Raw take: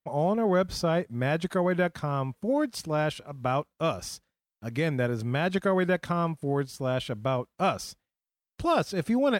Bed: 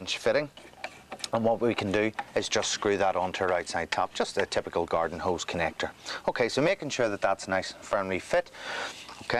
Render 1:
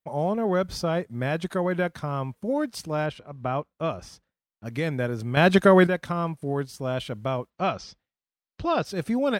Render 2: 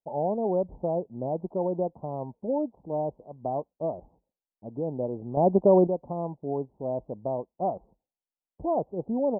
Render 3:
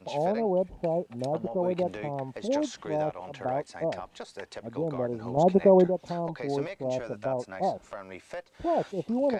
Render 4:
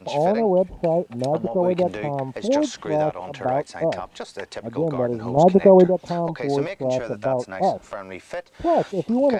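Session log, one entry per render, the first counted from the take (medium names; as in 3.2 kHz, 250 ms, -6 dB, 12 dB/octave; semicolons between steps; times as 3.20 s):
3.06–4.66 s: low-pass 2.2 kHz 6 dB/octave; 5.37–5.87 s: gain +9 dB; 7.50–8.85 s: low-pass 5.3 kHz 24 dB/octave
steep low-pass 920 Hz 72 dB/octave; peaking EQ 97 Hz -11 dB 1.9 oct
add bed -13 dB
trim +7.5 dB; peak limiter -3 dBFS, peak gain reduction 1.5 dB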